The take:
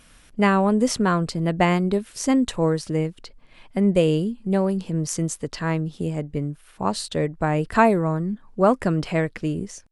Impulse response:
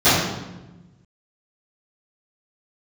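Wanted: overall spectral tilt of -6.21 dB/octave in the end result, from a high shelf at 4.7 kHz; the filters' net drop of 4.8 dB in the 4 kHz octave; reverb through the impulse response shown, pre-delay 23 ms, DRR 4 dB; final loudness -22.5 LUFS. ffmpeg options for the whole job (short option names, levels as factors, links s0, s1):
-filter_complex "[0:a]equalizer=f=4000:t=o:g=-3,highshelf=f=4700:g=-6.5,asplit=2[s0][s1];[1:a]atrim=start_sample=2205,adelay=23[s2];[s1][s2]afir=irnorm=-1:irlink=0,volume=0.0335[s3];[s0][s3]amix=inputs=2:normalize=0,volume=0.708"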